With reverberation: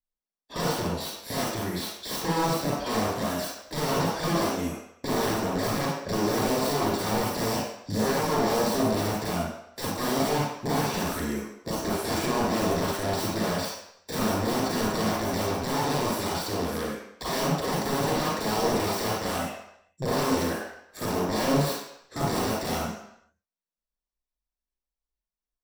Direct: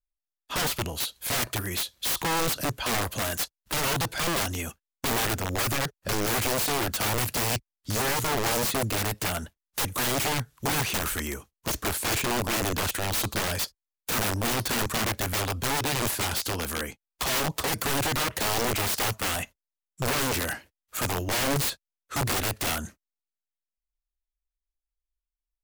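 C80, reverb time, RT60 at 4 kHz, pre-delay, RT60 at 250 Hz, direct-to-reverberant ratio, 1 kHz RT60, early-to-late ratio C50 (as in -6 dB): 2.5 dB, 0.75 s, 0.70 s, 34 ms, 0.55 s, -6.5 dB, 0.80 s, -2.0 dB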